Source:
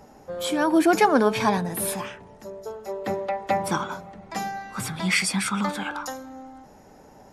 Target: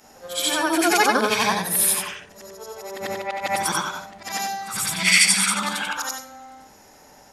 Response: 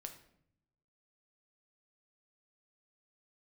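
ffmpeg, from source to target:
-af "afftfilt=real='re':imag='-im':win_size=8192:overlap=0.75,tiltshelf=f=1.2k:g=-8,volume=7.5dB"

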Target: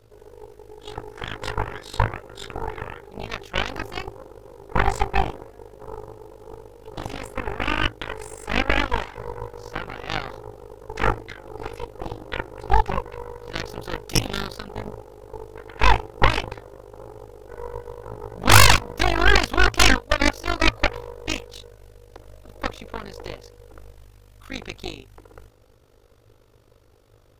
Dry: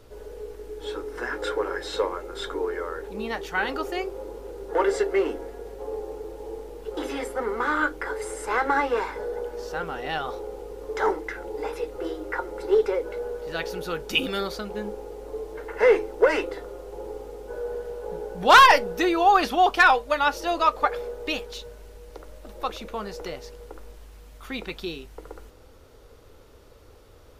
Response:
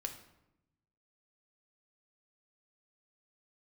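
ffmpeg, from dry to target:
-af "tremolo=f=50:d=0.824,aeval=exprs='0.473*(cos(1*acos(clip(val(0)/0.473,-1,1)))-cos(1*PI/2))+0.237*(cos(3*acos(clip(val(0)/0.473,-1,1)))-cos(3*PI/2))+0.188*(cos(6*acos(clip(val(0)/0.473,-1,1)))-cos(6*PI/2))':c=same,equalizer=f=110:w=7.7:g=10.5,volume=3.5dB"

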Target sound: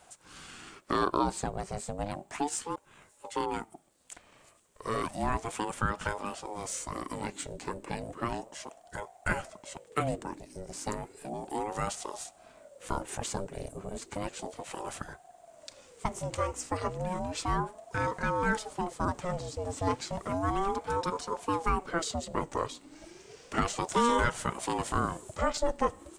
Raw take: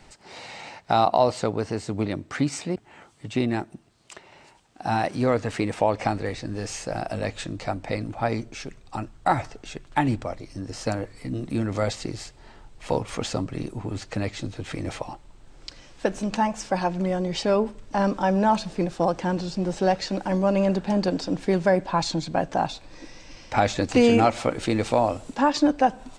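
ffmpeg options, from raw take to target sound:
-af "aexciter=amount=2.8:drive=8.7:freq=7k,aeval=exprs='val(0)*sin(2*PI*500*n/s+500*0.45/0.33*sin(2*PI*0.33*n/s))':c=same,volume=-5.5dB"

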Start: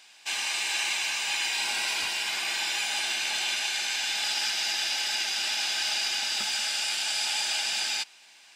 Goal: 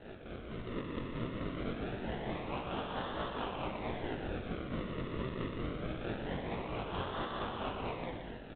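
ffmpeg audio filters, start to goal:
-filter_complex "[0:a]afftfilt=real='re*lt(hypot(re,im),0.0178)':imag='im*lt(hypot(re,im),0.0178)':win_size=1024:overlap=0.75,highpass=430,alimiter=level_in=18.5dB:limit=-24dB:level=0:latency=1:release=11,volume=-18.5dB,dynaudnorm=f=240:g=5:m=8dB,acrossover=split=1400[a][b];[a]aeval=exprs='val(0)*(1-0.7/2+0.7/2*cos(2*PI*4.5*n/s))':c=same[c];[b]aeval=exprs='val(0)*(1-0.7/2-0.7/2*cos(2*PI*4.5*n/s))':c=same[d];[c][d]amix=inputs=2:normalize=0,acrusher=samples=38:mix=1:aa=0.000001:lfo=1:lforange=38:lforate=0.24,flanger=delay=15.5:depth=7.7:speed=1.5,aecho=1:1:120:0.422,volume=11dB" -ar 8000 -c:a adpcm_g726 -b:a 24k

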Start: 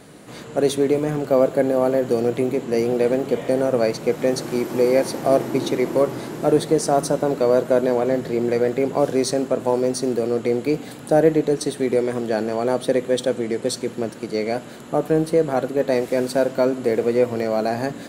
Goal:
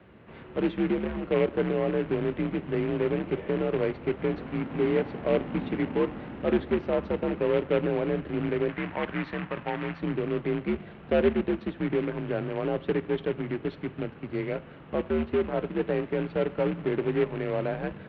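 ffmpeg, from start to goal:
-filter_complex "[0:a]acrusher=bits=2:mode=log:mix=0:aa=0.000001,asettb=1/sr,asplit=3[a][b][c];[a]atrim=end=8.694[d];[b]atrim=start=8.69:end=10.01,asetpts=PTS-STARTPTS,afade=t=in:d=0.004:c=qsin,afade=t=out:st=1.316:d=0.004:c=qsin,equalizer=f=125:t=o:w=1:g=-5,equalizer=f=500:t=o:w=1:g=-9,equalizer=f=1k:t=o:w=1:g=4,equalizer=f=2k:t=o:w=1:g=6[e];[c]atrim=start=10.006[f];[d][e]acrossfade=d=0.004:c1=hsin:c2=qsin[g];[g][f]acrossfade=d=0.004:c1=qsin:c2=hsin,highpass=f=160:t=q:w=0.5412,highpass=f=160:t=q:w=1.307,lowpass=f=3k:t=q:w=0.5176,lowpass=f=3k:t=q:w=0.7071,lowpass=f=3k:t=q:w=1.932,afreqshift=-87,volume=-8dB"

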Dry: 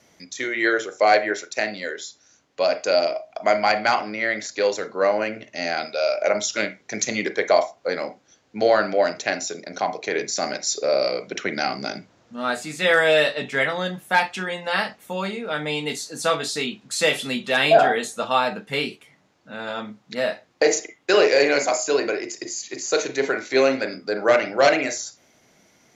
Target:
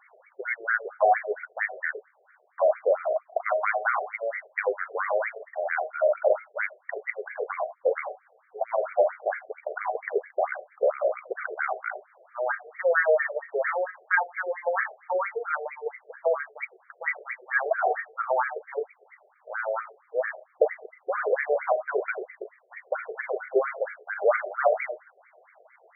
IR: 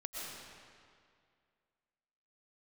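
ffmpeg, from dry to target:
-af "acompressor=threshold=-33dB:ratio=2,afftfilt=real='re*between(b*sr/1024,520*pow(1700/520,0.5+0.5*sin(2*PI*4.4*pts/sr))/1.41,520*pow(1700/520,0.5+0.5*sin(2*PI*4.4*pts/sr))*1.41)':imag='im*between(b*sr/1024,520*pow(1700/520,0.5+0.5*sin(2*PI*4.4*pts/sr))/1.41,520*pow(1700/520,0.5+0.5*sin(2*PI*4.4*pts/sr))*1.41)':win_size=1024:overlap=0.75,volume=9dB"

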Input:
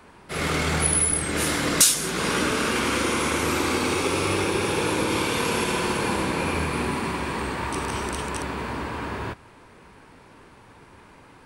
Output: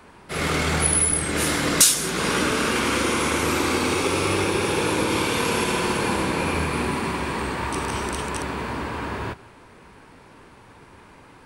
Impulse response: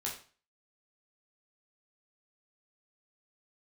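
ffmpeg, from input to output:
-filter_complex "[0:a]asplit=2[a][b];[1:a]atrim=start_sample=2205,adelay=122[c];[b][c]afir=irnorm=-1:irlink=0,volume=-23dB[d];[a][d]amix=inputs=2:normalize=0,volume=1.5dB"

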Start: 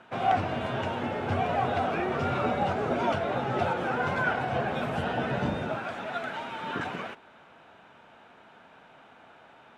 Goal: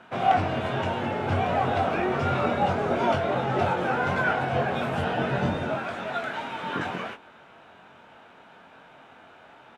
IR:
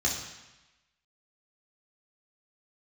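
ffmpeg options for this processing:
-filter_complex "[0:a]asplit=2[a][b];[b]adelay=22,volume=-5.5dB[c];[a][c]amix=inputs=2:normalize=0,volume=2dB"

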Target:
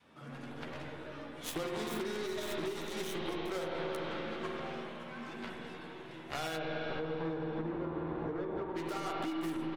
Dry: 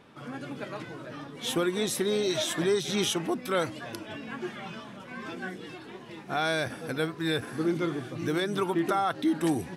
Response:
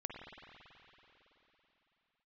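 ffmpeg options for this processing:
-filter_complex "[0:a]adynamicequalizer=threshold=0.0126:dfrequency=380:dqfactor=0.78:tfrequency=380:tqfactor=0.78:attack=5:release=100:ratio=0.375:range=2.5:mode=boostabove:tftype=bell,aeval=exprs='0.158*(cos(1*acos(clip(val(0)/0.158,-1,1)))-cos(1*PI/2))+0.00398*(cos(6*acos(clip(val(0)/0.158,-1,1)))-cos(6*PI/2))+0.0398*(cos(7*acos(clip(val(0)/0.158,-1,1)))-cos(7*PI/2))+0.00112*(cos(8*acos(clip(val(0)/0.158,-1,1)))-cos(8*PI/2))':c=same,asplit=3[a][b][c];[a]afade=t=out:st=6.56:d=0.02[d];[b]lowpass=1.1k,afade=t=in:st=6.56:d=0.02,afade=t=out:st=8.73:d=0.02[e];[c]afade=t=in:st=8.73:d=0.02[f];[d][e][f]amix=inputs=3:normalize=0,asplit=2[g][h];[h]adelay=13,volume=-7dB[i];[g][i]amix=inputs=2:normalize=0[j];[1:a]atrim=start_sample=2205,asetrate=48510,aresample=44100[k];[j][k]afir=irnorm=-1:irlink=0,alimiter=limit=-22.5dB:level=0:latency=1:release=212,acompressor=threshold=-33dB:ratio=6,bandreject=f=50:t=h:w=6,bandreject=f=100:t=h:w=6,bandreject=f=150:t=h:w=6,bandreject=f=200:t=h:w=6,bandreject=f=250:t=h:w=6,bandreject=f=300:t=h:w=6,bandreject=f=350:t=h:w=6,bandreject=f=400:t=h:w=6"

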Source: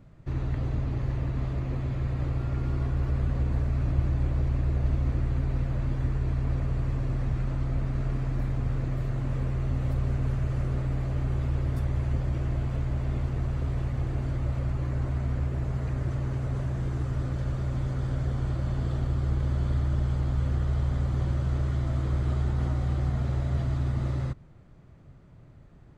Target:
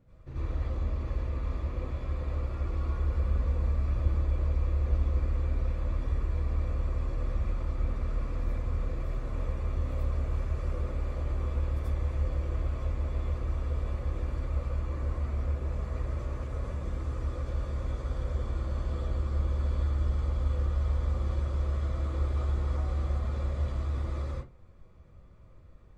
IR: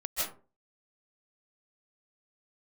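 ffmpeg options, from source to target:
-filter_complex "[0:a]equalizer=f=490:w=5.4:g=9[a];[1:a]atrim=start_sample=2205,asetrate=79380,aresample=44100[b];[a][b]afir=irnorm=-1:irlink=0,volume=-4dB"

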